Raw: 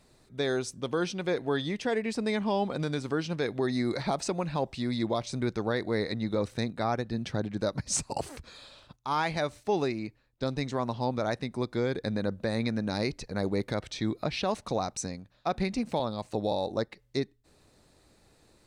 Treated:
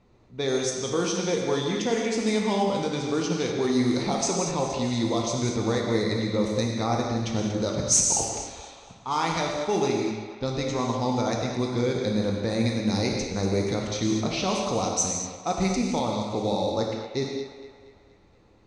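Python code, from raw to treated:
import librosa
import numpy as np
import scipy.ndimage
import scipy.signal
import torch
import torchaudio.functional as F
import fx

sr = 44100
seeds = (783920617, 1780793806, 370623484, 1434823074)

p1 = fx.graphic_eq_31(x, sr, hz=(630, 1600, 6300), db=(-4, -9, 11))
p2 = p1 + fx.echo_thinned(p1, sr, ms=236, feedback_pct=57, hz=420.0, wet_db=-9.5, dry=0)
p3 = fx.rev_gated(p2, sr, seeds[0], gate_ms=230, shape='flat', drr_db=0.0)
p4 = fx.env_lowpass(p3, sr, base_hz=2000.0, full_db=-21.5)
y = F.gain(torch.from_numpy(p4), 2.0).numpy()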